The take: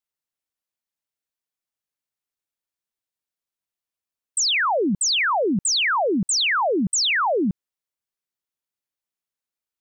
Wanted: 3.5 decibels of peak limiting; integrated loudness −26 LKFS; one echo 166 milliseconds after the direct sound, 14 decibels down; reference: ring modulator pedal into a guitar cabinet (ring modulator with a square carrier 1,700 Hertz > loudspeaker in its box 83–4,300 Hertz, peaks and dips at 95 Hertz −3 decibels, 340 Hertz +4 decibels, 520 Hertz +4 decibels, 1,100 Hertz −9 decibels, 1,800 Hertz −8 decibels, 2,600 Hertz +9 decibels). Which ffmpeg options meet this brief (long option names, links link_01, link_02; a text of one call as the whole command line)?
ffmpeg -i in.wav -af "alimiter=limit=-21dB:level=0:latency=1,aecho=1:1:166:0.2,aeval=exprs='val(0)*sgn(sin(2*PI*1700*n/s))':channel_layout=same,highpass=83,equalizer=frequency=95:width_type=q:width=4:gain=-3,equalizer=frequency=340:width_type=q:width=4:gain=4,equalizer=frequency=520:width_type=q:width=4:gain=4,equalizer=frequency=1100:width_type=q:width=4:gain=-9,equalizer=frequency=1800:width_type=q:width=4:gain=-8,equalizer=frequency=2600:width_type=q:width=4:gain=9,lowpass=frequency=4300:width=0.5412,lowpass=frequency=4300:width=1.3066,volume=-3dB" out.wav